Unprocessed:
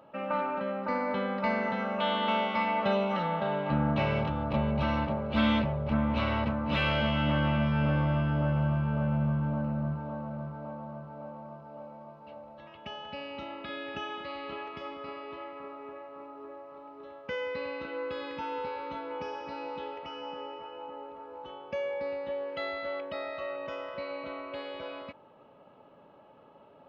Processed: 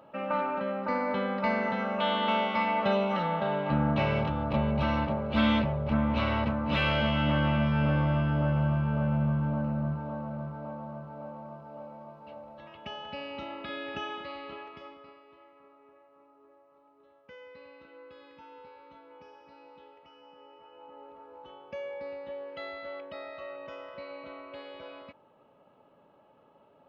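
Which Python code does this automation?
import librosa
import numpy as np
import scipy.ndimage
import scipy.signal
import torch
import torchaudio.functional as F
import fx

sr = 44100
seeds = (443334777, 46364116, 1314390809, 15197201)

y = fx.gain(x, sr, db=fx.line((14.07, 1.0), (14.85, -6.5), (15.24, -15.0), (20.32, -15.0), (21.1, -5.0)))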